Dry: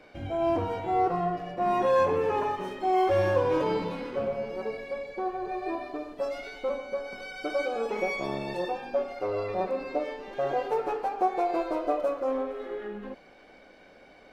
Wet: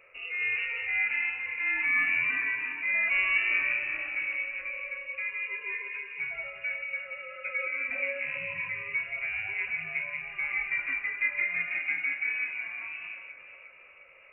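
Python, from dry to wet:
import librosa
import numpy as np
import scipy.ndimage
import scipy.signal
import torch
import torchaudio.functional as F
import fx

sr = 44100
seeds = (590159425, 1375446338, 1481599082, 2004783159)

p1 = x + fx.echo_alternate(x, sr, ms=178, hz=850.0, feedback_pct=71, wet_db=-6.0, dry=0)
p2 = fx.freq_invert(p1, sr, carrier_hz=2800)
y = p2 * librosa.db_to_amplitude(-4.0)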